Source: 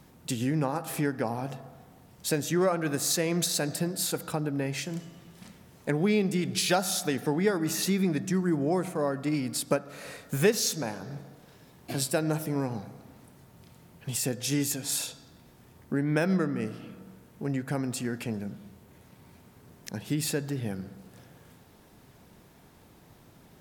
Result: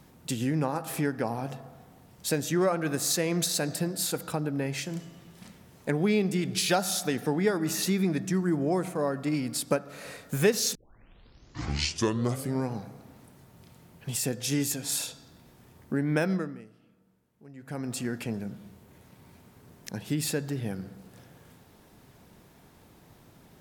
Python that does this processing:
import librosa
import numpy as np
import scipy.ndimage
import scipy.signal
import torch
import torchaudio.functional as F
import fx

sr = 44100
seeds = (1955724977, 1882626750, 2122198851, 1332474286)

y = fx.edit(x, sr, fx.tape_start(start_s=10.75, length_s=1.94),
    fx.fade_down_up(start_s=16.21, length_s=1.77, db=-18.5, fade_s=0.43), tone=tone)